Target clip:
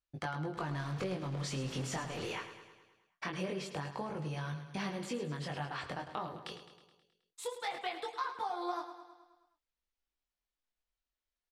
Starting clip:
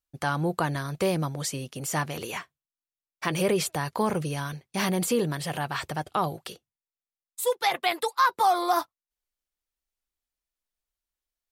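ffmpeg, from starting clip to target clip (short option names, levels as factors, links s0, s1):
-filter_complex "[0:a]asettb=1/sr,asplit=3[s0][s1][s2];[s0]atrim=end=0.574[s3];[s1]atrim=start=0.57:end=2.33,asetpts=PTS-STARTPTS,afade=t=in:d=0.004:c=qsin,afade=t=out:st=1.756:d=0.004:c=qsin,aeval=exprs='val(0)+0.5*0.0299*sgn(val(0))':c=same[s4];[s2]atrim=start=2.326[s5];[s3][s4]acrossfade=d=0.004:c1=hsin:c2=qsin[s6];[s6][s5]acrossfade=d=0.004:c1=qsin:c2=hsin,lowpass=4900,acompressor=threshold=0.0178:ratio=5,flanger=delay=19.5:depth=4.3:speed=0.22,aecho=1:1:106|212|318|424|530|636|742:0.282|0.166|0.0981|0.0579|0.0342|0.0201|0.0119,volume=1.12"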